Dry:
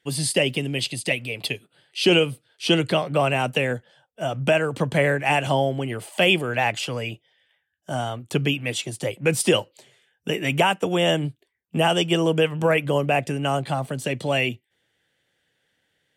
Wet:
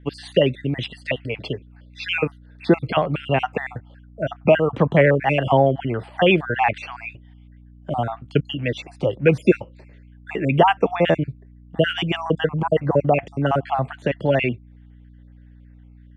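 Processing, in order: random holes in the spectrogram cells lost 47%; hum 60 Hz, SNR 25 dB; low-pass 2 kHz 12 dB/octave; trim +6 dB

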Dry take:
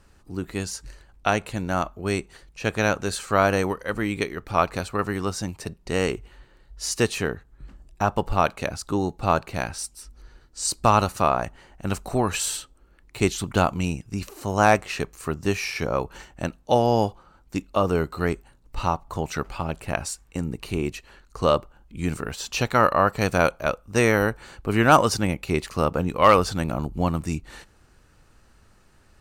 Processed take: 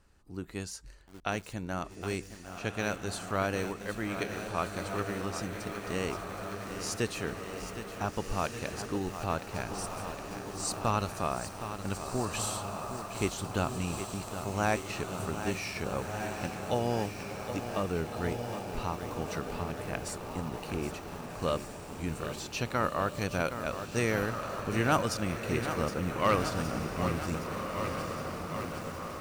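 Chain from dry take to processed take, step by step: echo that smears into a reverb 1593 ms, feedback 53%, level -8 dB; dynamic bell 860 Hz, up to -4 dB, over -28 dBFS, Q 0.83; bit-crushed delay 766 ms, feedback 80%, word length 6-bit, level -9.5 dB; trim -9 dB

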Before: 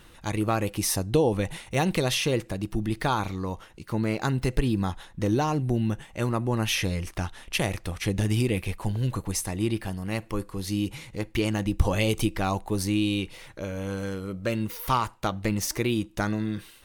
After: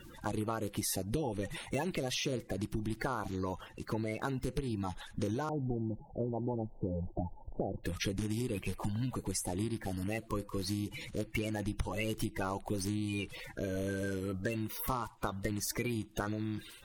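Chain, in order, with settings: coarse spectral quantiser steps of 30 dB; 5.49–7.84 s: steep low-pass 900 Hz 96 dB/octave; compression 6:1, threshold -32 dBFS, peak gain reduction 17 dB

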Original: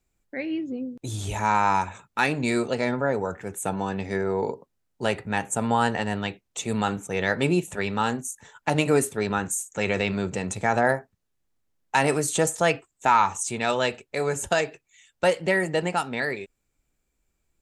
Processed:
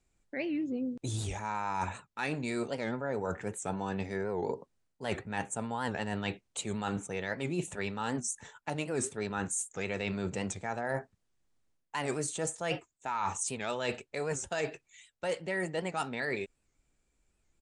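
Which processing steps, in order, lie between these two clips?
reverse; compression 12:1, threshold -30 dBFS, peak gain reduction 16.5 dB; reverse; resampled via 22.05 kHz; warped record 78 rpm, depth 160 cents

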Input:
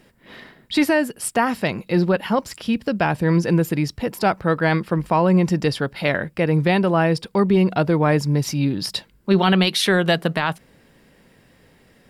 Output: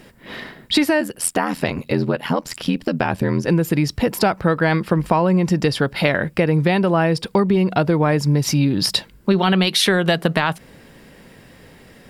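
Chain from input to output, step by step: compression, threshold -22 dBFS, peak gain reduction 10.5 dB; 1.00–3.48 s: ring modulator 42 Hz; trim +8.5 dB

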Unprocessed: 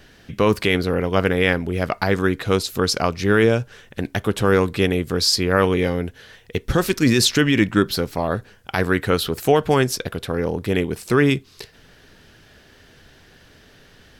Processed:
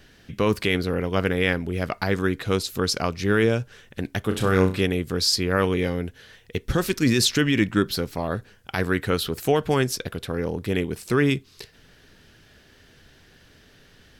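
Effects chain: peaking EQ 780 Hz -3 dB 1.7 oct; 4.26–4.81 s: flutter echo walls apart 5.5 m, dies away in 0.31 s; trim -3 dB

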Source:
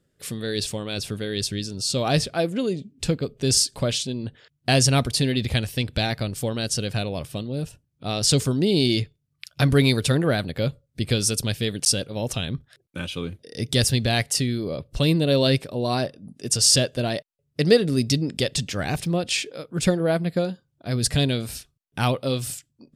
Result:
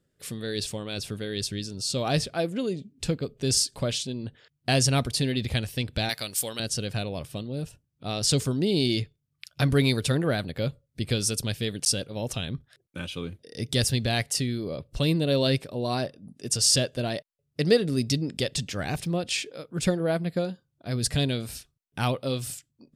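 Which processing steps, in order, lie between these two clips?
6.09–6.60 s: tilt EQ +4 dB/octave; trim -4 dB

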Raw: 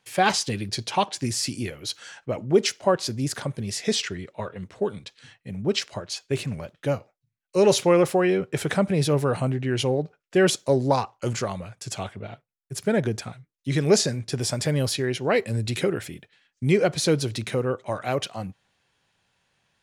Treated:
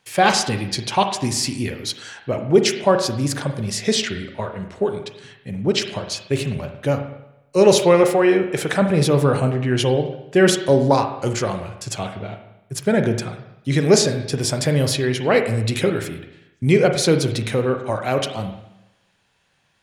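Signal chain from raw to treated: 8.03–8.82 s: bass shelf 170 Hz -8.5 dB; reverberation RT60 0.90 s, pre-delay 36 ms, DRR 6 dB; trim +4.5 dB

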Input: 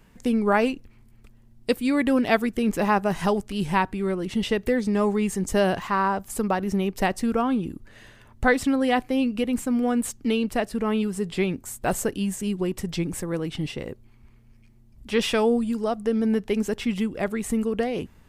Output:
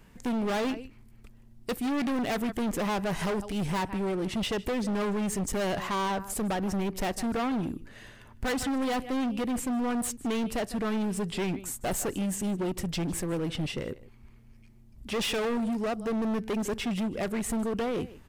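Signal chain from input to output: delay 154 ms -20.5 dB; overload inside the chain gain 27 dB

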